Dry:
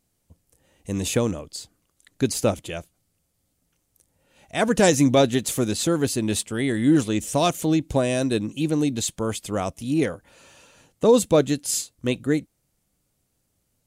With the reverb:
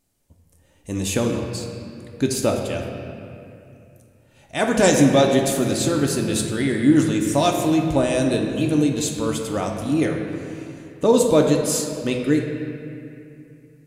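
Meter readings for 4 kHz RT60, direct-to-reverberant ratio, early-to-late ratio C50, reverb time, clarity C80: 1.8 s, 1.0 dB, 3.5 dB, 2.6 s, 4.5 dB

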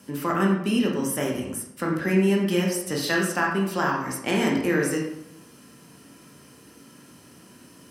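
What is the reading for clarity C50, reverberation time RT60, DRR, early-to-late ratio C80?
3.5 dB, 0.80 s, -1.5 dB, 6.5 dB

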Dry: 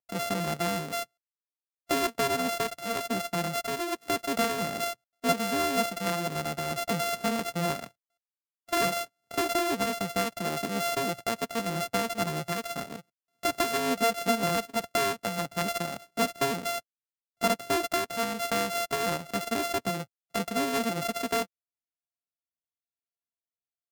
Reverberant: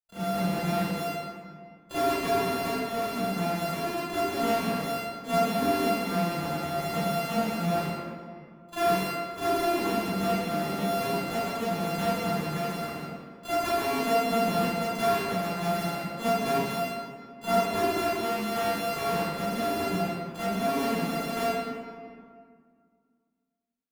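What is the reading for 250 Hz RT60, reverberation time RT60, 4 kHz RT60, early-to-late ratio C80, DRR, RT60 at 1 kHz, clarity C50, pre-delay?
2.5 s, 2.0 s, 1.2 s, -3.5 dB, -17.0 dB, 2.0 s, -9.0 dB, 33 ms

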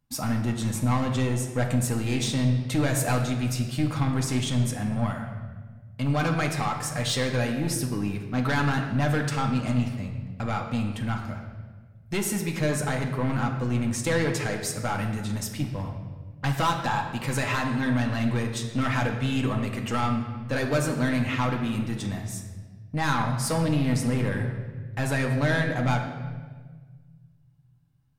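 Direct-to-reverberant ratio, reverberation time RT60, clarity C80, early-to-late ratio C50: 1.0 dB, 1.4 s, 7.5 dB, 6.0 dB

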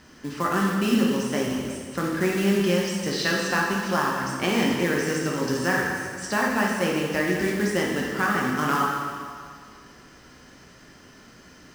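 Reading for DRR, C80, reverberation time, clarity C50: -3.0 dB, 2.0 dB, 2.0 s, 0.5 dB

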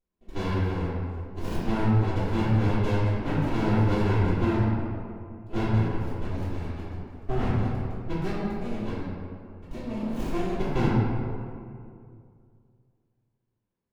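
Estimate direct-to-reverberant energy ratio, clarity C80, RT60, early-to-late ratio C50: -14.0 dB, -0.5 dB, 2.4 s, -3.0 dB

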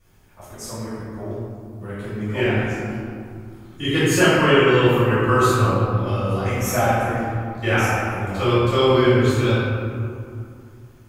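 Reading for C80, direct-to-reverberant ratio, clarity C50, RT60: -1.0 dB, -14.0 dB, -3.0 dB, 2.4 s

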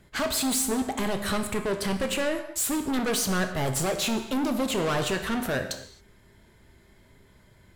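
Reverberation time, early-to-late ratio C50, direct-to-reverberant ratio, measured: no single decay rate, 8.5 dB, 6.0 dB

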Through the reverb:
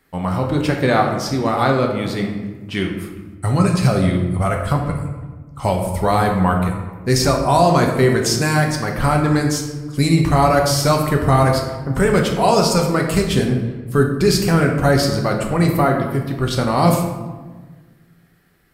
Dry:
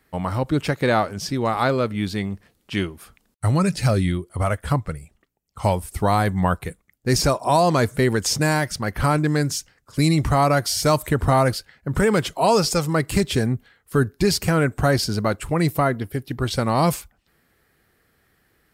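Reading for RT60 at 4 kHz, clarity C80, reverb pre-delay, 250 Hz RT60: 0.75 s, 7.0 dB, 3 ms, 2.0 s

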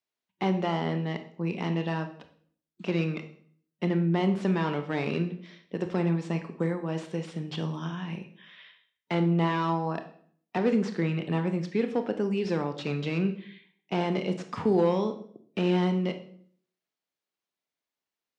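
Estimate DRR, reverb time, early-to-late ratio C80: 7.5 dB, 0.55 s, 14.5 dB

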